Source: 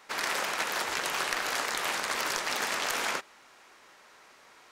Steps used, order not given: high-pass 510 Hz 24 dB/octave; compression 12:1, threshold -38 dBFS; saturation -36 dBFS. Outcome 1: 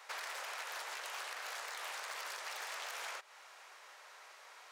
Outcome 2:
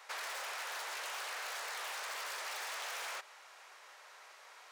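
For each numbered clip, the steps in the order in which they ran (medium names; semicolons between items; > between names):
compression > saturation > high-pass; saturation > high-pass > compression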